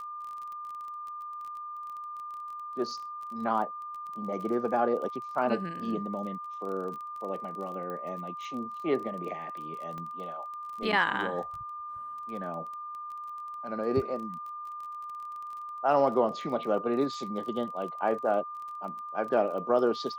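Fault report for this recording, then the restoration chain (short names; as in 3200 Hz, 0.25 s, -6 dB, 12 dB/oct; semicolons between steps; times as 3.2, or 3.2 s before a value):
crackle 24/s -38 dBFS
tone 1200 Hz -37 dBFS
7.9 pop -27 dBFS
9.98 pop -28 dBFS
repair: de-click; notch 1200 Hz, Q 30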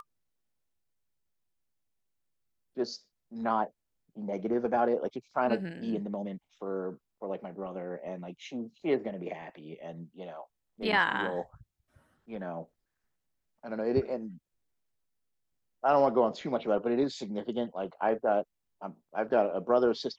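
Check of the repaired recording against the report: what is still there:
7.9 pop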